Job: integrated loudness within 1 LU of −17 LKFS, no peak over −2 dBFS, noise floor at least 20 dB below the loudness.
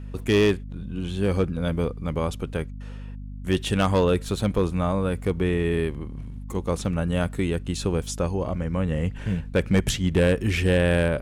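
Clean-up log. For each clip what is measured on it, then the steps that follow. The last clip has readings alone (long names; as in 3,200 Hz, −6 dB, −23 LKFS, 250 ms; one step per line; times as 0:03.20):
share of clipped samples 0.6%; peaks flattened at −13.5 dBFS; mains hum 50 Hz; hum harmonics up to 250 Hz; level of the hum −33 dBFS; integrated loudness −25.0 LKFS; sample peak −13.5 dBFS; target loudness −17.0 LKFS
→ clipped peaks rebuilt −13.5 dBFS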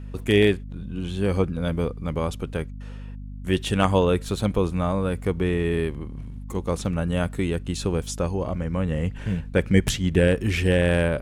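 share of clipped samples 0.0%; mains hum 50 Hz; hum harmonics up to 250 Hz; level of the hum −33 dBFS
→ mains-hum notches 50/100/150/200/250 Hz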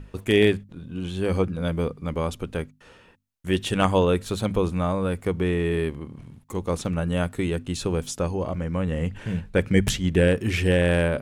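mains hum none found; integrated loudness −24.5 LKFS; sample peak −5.0 dBFS; target loudness −17.0 LKFS
→ level +7.5 dB
brickwall limiter −2 dBFS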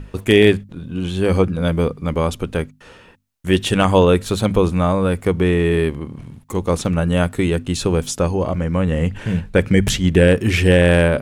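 integrated loudness −17.5 LKFS; sample peak −2.0 dBFS; background noise floor −46 dBFS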